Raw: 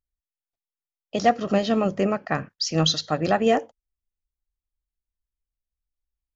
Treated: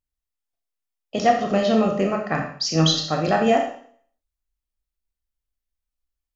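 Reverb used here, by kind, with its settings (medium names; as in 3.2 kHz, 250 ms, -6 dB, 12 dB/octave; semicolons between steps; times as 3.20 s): Schroeder reverb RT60 0.54 s, combs from 25 ms, DRR 2 dB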